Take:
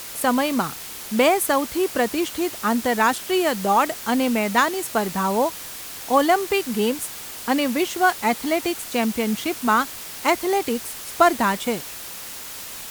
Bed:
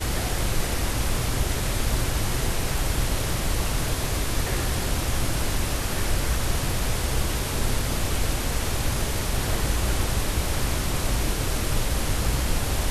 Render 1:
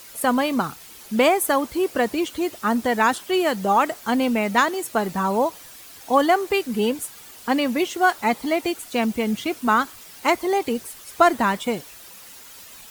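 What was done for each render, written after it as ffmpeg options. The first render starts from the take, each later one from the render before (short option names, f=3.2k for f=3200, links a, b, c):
-af "afftdn=nr=10:nf=-36"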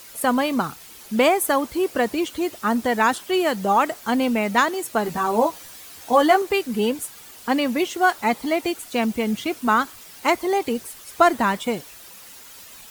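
-filter_complex "[0:a]asettb=1/sr,asplit=3[a][b][c];[a]atrim=end=5.044[d];[b]atrim=start=5.04:end=6.42,asetpts=PTS-STARTPTS,afade=t=in:d=0.004:c=qsin,afade=t=out:st=1.376:d=0.004:c=qsin,asplit=2[e][f];[f]adelay=13,volume=-3.5dB[g];[e][g]amix=inputs=2:normalize=0,atrim=end_sample=60858[h];[c]atrim=start=6.416[i];[d][h]acrossfade=d=0.004:c1=hsin:c2=qsin[j];[j][i]acrossfade=d=0.004:c1=qsin:c2=hsin"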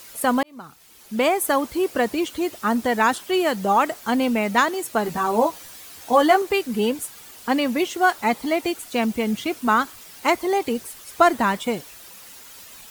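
-filter_complex "[0:a]asplit=2[a][b];[a]atrim=end=0.43,asetpts=PTS-STARTPTS,afade=t=out:st=0.426:d=0.004:c=hsin[c];[b]atrim=start=0.43,asetpts=PTS-STARTPTS,afade=t=in:d=1.11[d];[c][d]concat=n=2:v=0:a=1"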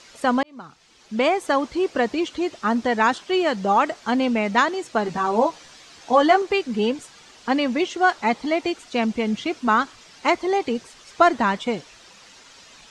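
-af "lowpass=f=6.5k:w=0.5412,lowpass=f=6.5k:w=1.3066,equalizer=f=80:t=o:w=0.37:g=-7.5"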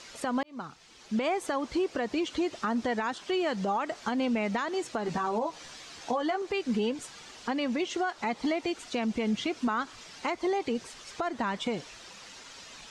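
-af "acompressor=threshold=-23dB:ratio=6,alimiter=limit=-21dB:level=0:latency=1:release=156"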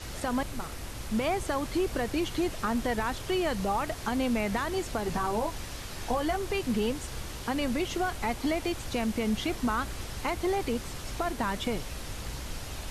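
-filter_complex "[1:a]volume=-14dB[a];[0:a][a]amix=inputs=2:normalize=0"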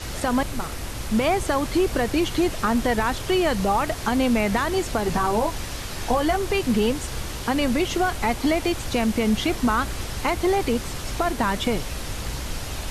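-af "volume=7.5dB"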